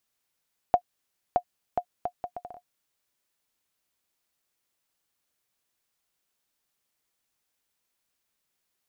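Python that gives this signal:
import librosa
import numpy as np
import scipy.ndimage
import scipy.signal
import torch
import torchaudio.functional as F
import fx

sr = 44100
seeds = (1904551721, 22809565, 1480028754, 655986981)

y = fx.bouncing_ball(sr, first_gap_s=0.62, ratio=0.67, hz=715.0, decay_ms=75.0, level_db=-8.5)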